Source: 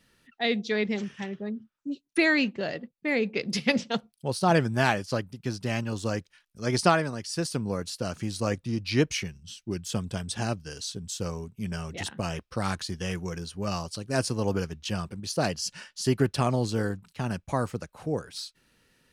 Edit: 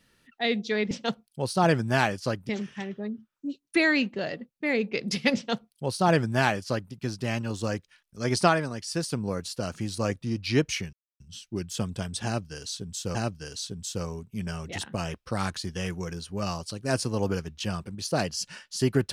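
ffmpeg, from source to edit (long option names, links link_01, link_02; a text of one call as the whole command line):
ffmpeg -i in.wav -filter_complex "[0:a]asplit=5[link_01][link_02][link_03][link_04][link_05];[link_01]atrim=end=0.912[link_06];[link_02]atrim=start=3.768:end=5.352[link_07];[link_03]atrim=start=0.908:end=9.35,asetpts=PTS-STARTPTS,afade=type=out:start_time=8.438:duration=0.004:curve=hsin,apad=pad_dur=0.27[link_08];[link_04]atrim=start=9.35:end=11.302,asetpts=PTS-STARTPTS,afade=type=in:duration=0.004:curve=hsin[link_09];[link_05]atrim=start=10.398[link_10];[link_06][link_07]acrossfade=duration=0.004:curve1=hsin:curve2=hsin[link_11];[link_08][link_09]concat=n=2:v=0:a=1[link_12];[link_11][link_12]acrossfade=duration=0.004:curve1=hsin:curve2=hsin[link_13];[link_13][link_10]acrossfade=duration=0.004:curve1=hsin:curve2=hsin" out.wav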